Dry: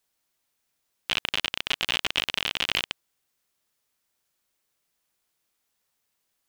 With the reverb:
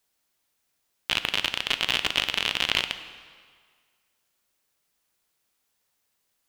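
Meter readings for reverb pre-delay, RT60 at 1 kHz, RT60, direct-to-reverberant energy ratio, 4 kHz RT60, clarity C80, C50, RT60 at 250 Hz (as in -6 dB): 5 ms, 1.9 s, 1.8 s, 10.0 dB, 1.6 s, 13.0 dB, 11.5 dB, 1.7 s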